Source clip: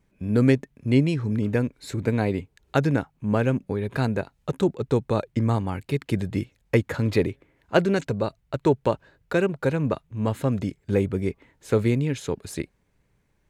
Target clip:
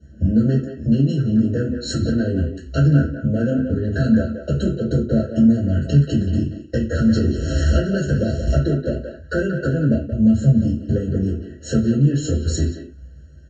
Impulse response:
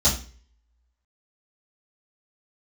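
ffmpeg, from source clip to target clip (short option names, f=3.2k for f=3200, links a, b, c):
-filter_complex "[0:a]asettb=1/sr,asplit=3[a][b][c];[a]atrim=end=6.974[d];[b]atrim=start=6.97:end=8.58,asetpts=PTS-STARTPTS,afade=t=in:d=0.004:c=qsin,afade=t=out:st=1.606:d=0.004:c=qsin,aeval=exprs='val(0)+0.5*0.0224*sgn(val(0))':c=same[e];[c]atrim=start=8.576[f];[d][e]acrossfade=d=0.004:c1=hsin:c2=qsin[g];[g][f]acrossfade=d=0.004:c1=qsin:c2=hsin,asettb=1/sr,asplit=3[h][i][j];[h]atrim=end=10.114[k];[i]atrim=start=10.11:end=10.59,asetpts=PTS-STARTPTS,afade=t=in:d=0.004:c=qsin,afade=t=out:st=0.476:d=0.004:c=qsin,bass=f=250:g=8,treble=f=4k:g=6[l];[j]atrim=start=10.586[m];[k][l]acrossfade=d=0.004:c1=hsin:c2=qsin[n];[n][m]acrossfade=d=0.004:c1=qsin:c2=hsin,acompressor=threshold=-33dB:ratio=6,flanger=delay=9.2:depth=2.4:regen=-49:speed=0.18:shape=sinusoidal,asoftclip=type=tanh:threshold=-33dB[o];[1:a]atrim=start_sample=2205,afade=t=out:st=0.21:d=0.01,atrim=end_sample=9702,asetrate=48510,aresample=44100[p];[o][p]afir=irnorm=-1:irlink=0,aresample=16000,aresample=44100,asplit=2[q][r];[r]adelay=180,highpass=300,lowpass=3.4k,asoftclip=type=hard:threshold=-18dB,volume=-7dB[s];[q][s]amix=inputs=2:normalize=0,afftfilt=real='re*eq(mod(floor(b*sr/1024/650),2),0)':imag='im*eq(mod(floor(b*sr/1024/650),2),0)':win_size=1024:overlap=0.75,volume=4.5dB"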